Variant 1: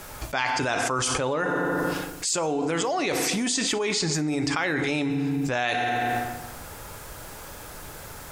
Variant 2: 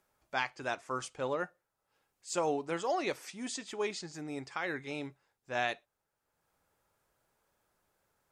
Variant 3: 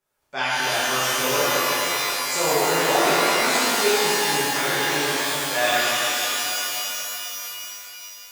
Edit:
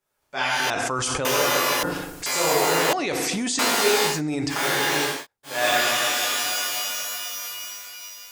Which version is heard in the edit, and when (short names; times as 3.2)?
3
0.7–1.25 from 1
1.83–2.26 from 1
2.93–3.59 from 1
4.13–4.56 from 1, crossfade 0.16 s
5.15–5.55 from 2, crossfade 0.24 s